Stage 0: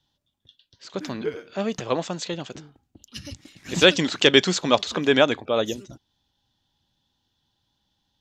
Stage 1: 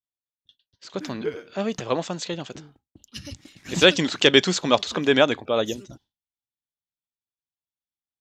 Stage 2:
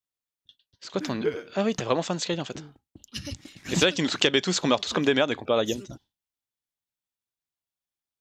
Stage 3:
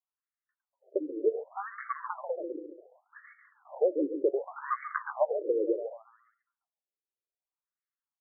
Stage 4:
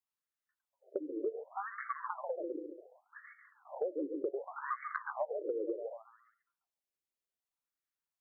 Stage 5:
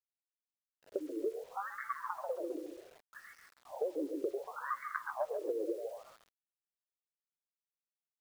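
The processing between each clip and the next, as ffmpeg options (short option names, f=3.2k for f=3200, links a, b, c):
-af "agate=range=-33dB:threshold=-49dB:ratio=3:detection=peak"
-af "acompressor=threshold=-20dB:ratio=6,volume=2dB"
-af "aecho=1:1:140|280|420|560|700:0.355|0.167|0.0784|0.0368|0.0173,afftfilt=real='re*between(b*sr/1024,380*pow(1600/380,0.5+0.5*sin(2*PI*0.67*pts/sr))/1.41,380*pow(1600/380,0.5+0.5*sin(2*PI*0.67*pts/sr))*1.41)':imag='im*between(b*sr/1024,380*pow(1600/380,0.5+0.5*sin(2*PI*0.67*pts/sr))/1.41,380*pow(1600/380,0.5+0.5*sin(2*PI*0.67*pts/sr))*1.41)':win_size=1024:overlap=0.75"
-af "acompressor=threshold=-33dB:ratio=4,volume=-1dB"
-filter_complex "[0:a]asplit=4[a][b][c][d];[b]adelay=134,afreqshift=45,volume=-17dB[e];[c]adelay=268,afreqshift=90,volume=-26.9dB[f];[d]adelay=402,afreqshift=135,volume=-36.8dB[g];[a][e][f][g]amix=inputs=4:normalize=0,acrusher=bits=9:mix=0:aa=0.000001"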